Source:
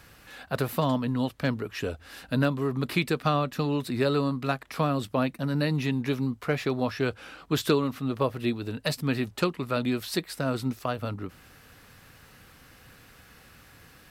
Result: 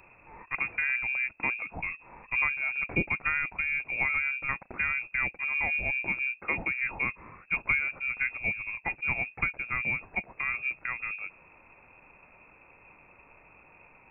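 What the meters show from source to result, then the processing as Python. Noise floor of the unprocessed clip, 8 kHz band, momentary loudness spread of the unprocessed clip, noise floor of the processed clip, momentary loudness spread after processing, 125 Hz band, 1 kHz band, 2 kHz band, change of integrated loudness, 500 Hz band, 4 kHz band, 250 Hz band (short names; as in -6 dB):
-54 dBFS, under -35 dB, 7 LU, -58 dBFS, 7 LU, -15.5 dB, -6.5 dB, +9.5 dB, -0.5 dB, -17.5 dB, under -15 dB, -17.5 dB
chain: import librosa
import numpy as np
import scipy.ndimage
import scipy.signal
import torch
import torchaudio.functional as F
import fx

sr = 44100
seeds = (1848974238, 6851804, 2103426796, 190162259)

y = fx.freq_invert(x, sr, carrier_hz=2600)
y = fx.peak_eq(y, sr, hz=1600.0, db=-8.5, octaves=1.5)
y = F.gain(torch.from_numpy(y), 2.0).numpy()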